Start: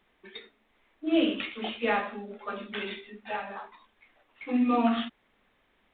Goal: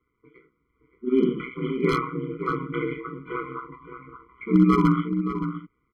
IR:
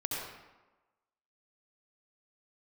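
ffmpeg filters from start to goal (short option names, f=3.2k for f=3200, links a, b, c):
-filter_complex "[0:a]lowpass=f=2k:w=0.5412,lowpass=f=2k:w=1.3066,dynaudnorm=f=380:g=7:m=16.5dB,aeval=exprs='val(0)*sin(2*PI*63*n/s)':c=same,aeval=exprs='0.376*(abs(mod(val(0)/0.376+3,4)-2)-1)':c=same,asplit=2[a][b];[b]adelay=571.4,volume=-9dB,highshelf=f=4k:g=-12.9[c];[a][c]amix=inputs=2:normalize=0,afftfilt=real='re*eq(mod(floor(b*sr/1024/490),2),0)':imag='im*eq(mod(floor(b*sr/1024/490),2),0)':win_size=1024:overlap=0.75"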